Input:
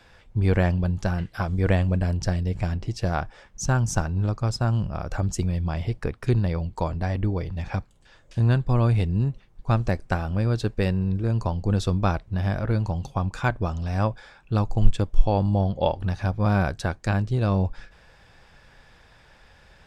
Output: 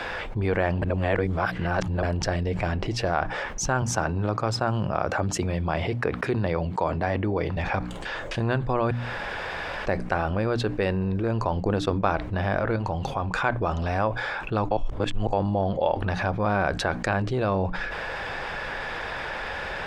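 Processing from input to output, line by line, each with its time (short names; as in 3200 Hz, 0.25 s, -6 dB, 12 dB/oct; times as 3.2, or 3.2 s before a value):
0.82–2.03 reverse
3.82–7.57 HPF 80 Hz 24 dB/oct
8.91–9.86 room tone
11.56–12.11 transient shaper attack +8 dB, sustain -9 dB
12.76–13.33 compressor 2.5:1, threshold -31 dBFS
14.71–15.33 reverse
whole clip: tone controls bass -12 dB, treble -14 dB; notches 60/120/180/240/300 Hz; fast leveller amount 70%; gain -3 dB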